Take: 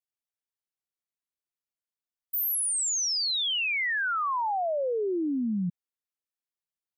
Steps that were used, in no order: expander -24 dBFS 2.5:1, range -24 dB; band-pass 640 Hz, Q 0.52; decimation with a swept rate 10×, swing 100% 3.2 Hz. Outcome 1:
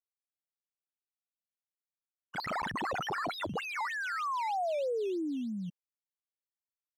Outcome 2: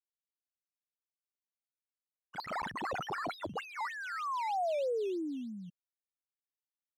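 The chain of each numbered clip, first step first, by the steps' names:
expander > decimation with a swept rate > band-pass; decimation with a swept rate > band-pass > expander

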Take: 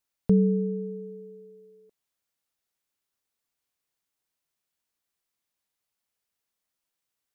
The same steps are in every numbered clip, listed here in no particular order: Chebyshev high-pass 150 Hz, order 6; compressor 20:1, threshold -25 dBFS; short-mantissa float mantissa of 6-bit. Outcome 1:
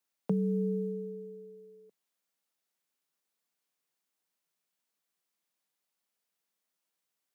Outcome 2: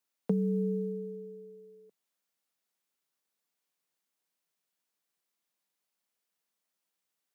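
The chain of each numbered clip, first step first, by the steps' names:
compressor > short-mantissa float > Chebyshev high-pass; Chebyshev high-pass > compressor > short-mantissa float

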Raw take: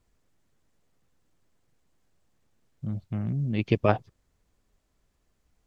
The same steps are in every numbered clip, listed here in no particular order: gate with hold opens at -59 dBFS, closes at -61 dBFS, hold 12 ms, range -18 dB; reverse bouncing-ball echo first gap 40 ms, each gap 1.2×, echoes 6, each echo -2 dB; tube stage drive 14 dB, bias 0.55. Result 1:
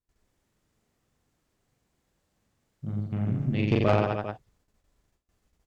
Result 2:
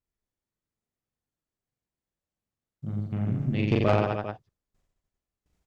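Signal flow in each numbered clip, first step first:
reverse bouncing-ball echo > gate with hold > tube stage; gate with hold > reverse bouncing-ball echo > tube stage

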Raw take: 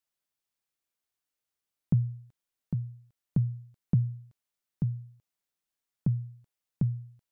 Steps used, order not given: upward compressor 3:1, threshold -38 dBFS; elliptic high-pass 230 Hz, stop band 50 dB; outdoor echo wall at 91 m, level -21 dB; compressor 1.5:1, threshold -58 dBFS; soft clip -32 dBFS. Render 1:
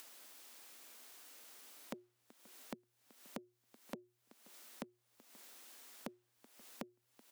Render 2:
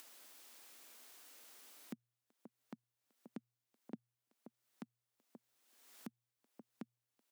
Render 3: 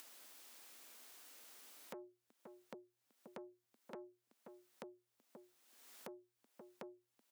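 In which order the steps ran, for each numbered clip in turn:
compressor > soft clip > elliptic high-pass > upward compressor > outdoor echo; outdoor echo > upward compressor > elliptic high-pass > compressor > soft clip; soft clip > outdoor echo > upward compressor > elliptic high-pass > compressor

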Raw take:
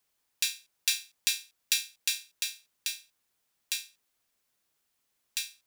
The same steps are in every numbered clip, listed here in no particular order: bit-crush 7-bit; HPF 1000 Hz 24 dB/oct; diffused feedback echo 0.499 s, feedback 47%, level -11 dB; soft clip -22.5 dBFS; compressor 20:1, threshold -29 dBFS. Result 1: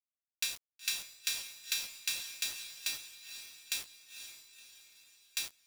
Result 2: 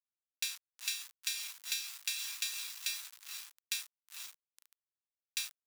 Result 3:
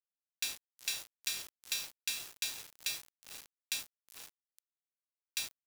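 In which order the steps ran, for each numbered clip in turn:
soft clip > HPF > bit-crush > diffused feedback echo > compressor; diffused feedback echo > bit-crush > compressor > soft clip > HPF; compressor > diffused feedback echo > soft clip > HPF > bit-crush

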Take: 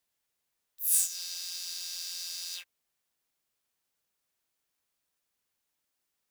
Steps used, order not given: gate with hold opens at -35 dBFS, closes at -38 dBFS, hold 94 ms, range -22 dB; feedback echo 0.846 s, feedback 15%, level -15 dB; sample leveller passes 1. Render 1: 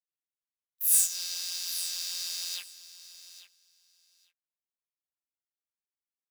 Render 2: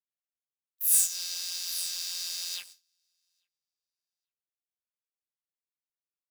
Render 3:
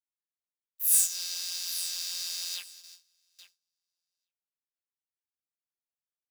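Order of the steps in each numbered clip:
gate with hold > sample leveller > feedback echo; feedback echo > gate with hold > sample leveller; sample leveller > feedback echo > gate with hold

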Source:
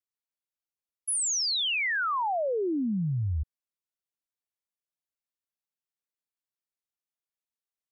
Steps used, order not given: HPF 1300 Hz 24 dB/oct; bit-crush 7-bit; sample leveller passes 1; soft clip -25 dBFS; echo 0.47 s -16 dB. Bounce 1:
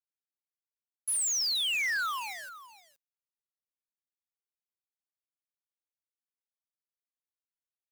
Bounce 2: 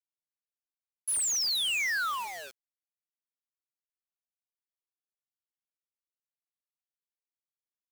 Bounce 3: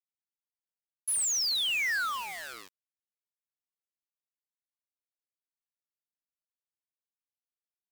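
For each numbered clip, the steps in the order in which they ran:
sample leveller > HPF > bit-crush > echo > soft clip; HPF > soft clip > sample leveller > echo > bit-crush; echo > sample leveller > HPF > soft clip > bit-crush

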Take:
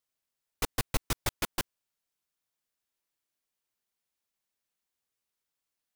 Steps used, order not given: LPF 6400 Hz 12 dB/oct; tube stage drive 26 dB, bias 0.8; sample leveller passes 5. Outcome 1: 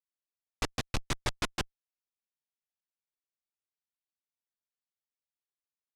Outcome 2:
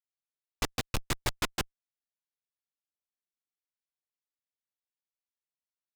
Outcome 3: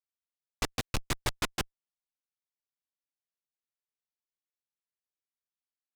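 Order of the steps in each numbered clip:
sample leveller > tube stage > LPF; LPF > sample leveller > tube stage; sample leveller > LPF > tube stage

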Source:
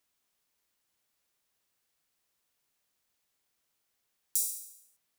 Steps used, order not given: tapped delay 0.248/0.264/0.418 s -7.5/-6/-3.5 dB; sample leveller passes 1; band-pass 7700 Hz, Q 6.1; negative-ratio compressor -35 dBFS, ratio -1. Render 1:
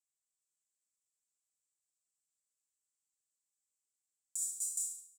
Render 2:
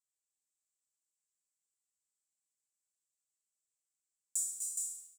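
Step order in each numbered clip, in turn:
tapped delay > sample leveller > band-pass > negative-ratio compressor; band-pass > negative-ratio compressor > sample leveller > tapped delay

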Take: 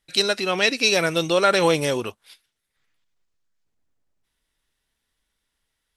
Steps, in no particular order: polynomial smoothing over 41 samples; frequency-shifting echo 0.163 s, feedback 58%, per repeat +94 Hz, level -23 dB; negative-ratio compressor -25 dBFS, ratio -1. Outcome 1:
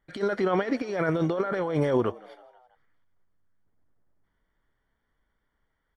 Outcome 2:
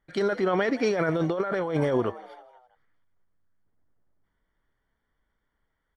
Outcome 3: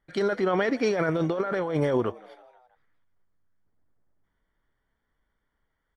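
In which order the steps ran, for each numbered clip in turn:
negative-ratio compressor > frequency-shifting echo > polynomial smoothing; frequency-shifting echo > polynomial smoothing > negative-ratio compressor; polynomial smoothing > negative-ratio compressor > frequency-shifting echo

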